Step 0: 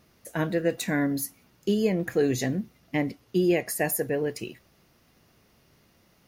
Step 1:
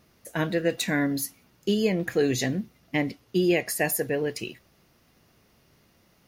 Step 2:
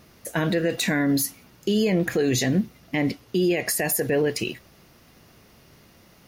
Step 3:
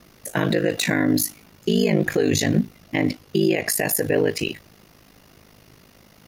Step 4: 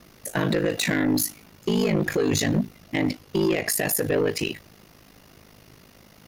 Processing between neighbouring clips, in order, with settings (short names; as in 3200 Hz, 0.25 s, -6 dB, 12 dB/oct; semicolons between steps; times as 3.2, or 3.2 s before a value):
dynamic EQ 3500 Hz, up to +6 dB, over -47 dBFS, Q 0.73
limiter -22.5 dBFS, peak gain reduction 11.5 dB; gain +8.5 dB
ring modulator 26 Hz; gain +5 dB
soft clip -15.5 dBFS, distortion -14 dB